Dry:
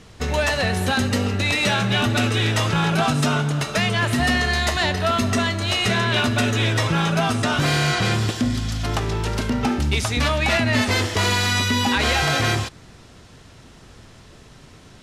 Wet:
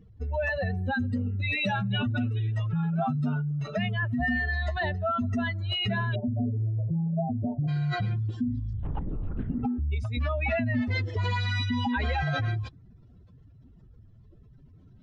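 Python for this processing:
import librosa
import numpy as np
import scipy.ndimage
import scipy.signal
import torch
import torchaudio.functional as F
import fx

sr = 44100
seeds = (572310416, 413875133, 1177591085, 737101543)

y = fx.spec_expand(x, sr, power=2.5)
y = fx.steep_lowpass(y, sr, hz=770.0, slope=72, at=(6.14, 7.67), fade=0.02)
y = fx.lpc_vocoder(y, sr, seeds[0], excitation='whisper', order=8, at=(8.73, 9.62))
y = F.gain(torch.from_numpy(y), -7.0).numpy()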